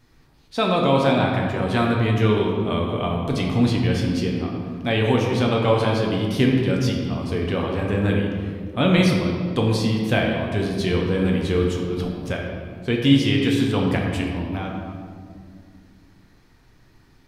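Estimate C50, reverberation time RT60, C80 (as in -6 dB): 2.0 dB, 2.1 s, 3.5 dB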